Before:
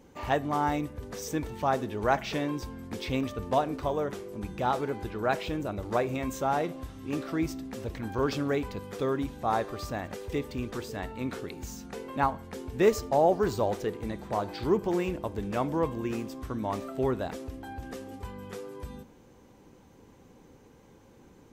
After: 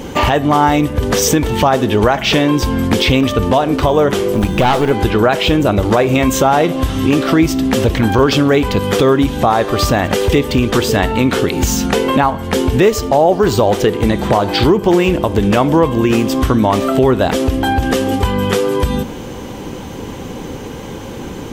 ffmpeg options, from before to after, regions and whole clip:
-filter_complex "[0:a]asettb=1/sr,asplit=3[a][b][c];[a]atrim=end=4.324[d];[b]atrim=start=4.32:end=4.91,asetpts=PTS-STARTPTS,afade=t=in:d=0.004:c=qsin,afade=t=out:st=0.586:d=0.004:c=qsin,acrusher=bits=8:mode=log:mix=0:aa=0.000001,aeval=exprs='(tanh(20*val(0)+0.5)-tanh(0.5))/20':c=same[e];[c]atrim=start=4.906[f];[d][e]acrossfade=d=0.004:c1=hsin:c2=qsin[g];[g][f]acrossfade=d=0.004:c1=qsin:c2=hsin,equalizer=f=3.1k:t=o:w=0.39:g=6.5,acompressor=threshold=-40dB:ratio=3,alimiter=level_in=29.5dB:limit=-1dB:release=50:level=0:latency=1,volume=-1dB"

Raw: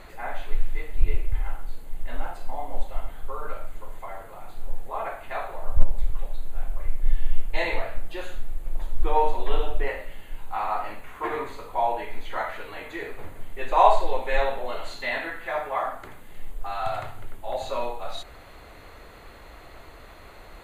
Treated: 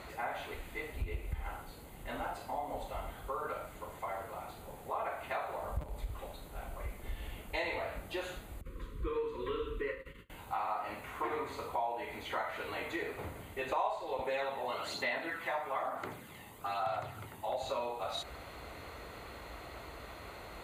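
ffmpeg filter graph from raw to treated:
-filter_complex "[0:a]asettb=1/sr,asplit=3[a][b][c];[a]atrim=end=8.614[d];[b]atrim=start=8.61:end=10.3,asetpts=PTS-STARTPTS,afade=t=in:d=0.004:c=qsin,afade=t=out:st=1.686:d=0.004:c=qsin,highshelf=f=3.4k:g=-11.5,agate=range=-33dB:threshold=-29dB:ratio=3:release=100:detection=peak,asuperstop=centerf=730:order=20:qfactor=1.7[e];[c]atrim=start=10.296[f];[d][e]acrossfade=d=0.004:c1=hsin:c2=qsin[g];[g][f]acrossfade=d=0.004:c1=qsin:c2=hsin,asettb=1/sr,asplit=3[h][i][j];[h]atrim=end=14.194[k];[i]atrim=start=14.19:end=17.49,asetpts=PTS-STARTPTS,afade=t=in:d=0.004:c=qsin,afade=t=out:st=3.296:d=0.004:c=qsin,highpass=120,aphaser=in_gain=1:out_gain=1:delay=1.1:decay=0.39:speed=1.1:type=sinusoidal[l];[j]atrim=start=17.486[m];[k][l]acrossfade=d=0.004:c1=hsin:c2=qsin[n];[n][m]acrossfade=d=0.004:c1=qsin:c2=hsin,highpass=f=48:w=0.5412,highpass=f=48:w=1.3066,bandreject=f=1.7k:w=15,acompressor=threshold=-34dB:ratio=4"

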